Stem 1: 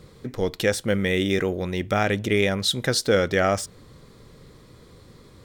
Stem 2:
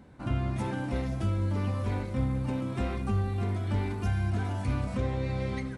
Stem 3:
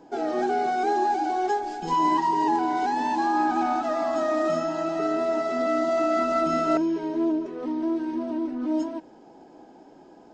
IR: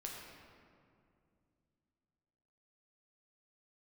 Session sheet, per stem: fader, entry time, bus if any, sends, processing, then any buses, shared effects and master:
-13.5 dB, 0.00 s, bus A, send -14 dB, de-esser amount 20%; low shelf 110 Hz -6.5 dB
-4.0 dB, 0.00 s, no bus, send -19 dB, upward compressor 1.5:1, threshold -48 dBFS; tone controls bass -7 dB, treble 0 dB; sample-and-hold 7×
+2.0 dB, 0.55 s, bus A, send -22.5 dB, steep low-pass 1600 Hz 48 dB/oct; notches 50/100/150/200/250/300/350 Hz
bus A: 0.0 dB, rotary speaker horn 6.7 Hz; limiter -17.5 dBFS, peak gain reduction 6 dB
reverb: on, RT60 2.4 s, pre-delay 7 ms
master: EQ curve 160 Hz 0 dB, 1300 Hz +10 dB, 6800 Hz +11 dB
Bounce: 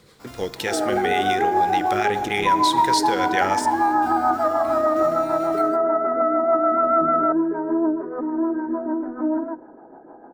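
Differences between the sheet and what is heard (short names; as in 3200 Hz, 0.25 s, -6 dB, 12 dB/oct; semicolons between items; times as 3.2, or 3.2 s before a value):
stem 1 -13.5 dB -> -6.0 dB; stem 2 -4.0 dB -> -13.0 dB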